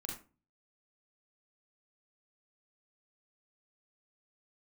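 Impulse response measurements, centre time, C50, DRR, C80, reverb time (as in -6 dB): 33 ms, 4.5 dB, -1.0 dB, 10.5 dB, 0.35 s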